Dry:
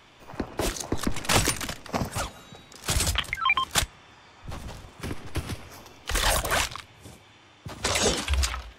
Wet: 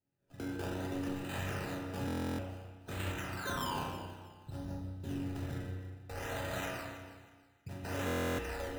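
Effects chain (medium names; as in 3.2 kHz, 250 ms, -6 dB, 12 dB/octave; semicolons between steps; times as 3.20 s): tape stop on the ending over 0.41 s; gate -39 dBFS, range -25 dB; level-controlled noise filter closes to 600 Hz, open at -21.5 dBFS; bass shelf 210 Hz +11.5 dB; in parallel at -2 dB: compression, threshold -38 dBFS, peak gain reduction 24.5 dB; on the sum: peak limiter -18 dBFS, peak gain reduction 16 dB; chord resonator F#2 major, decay 0.74 s; decimation with a swept rate 16×, swing 100% 0.58 Hz; comb of notches 1.1 kHz; on a send: echo whose repeats swap between lows and highs 160 ms, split 850 Hz, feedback 53%, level -9.5 dB; on the sum: spring tank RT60 1.1 s, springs 32/57 ms, chirp 70 ms, DRR 0 dB; buffer glitch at 2.06/8.06 s, samples 1024, times 13; trim +7 dB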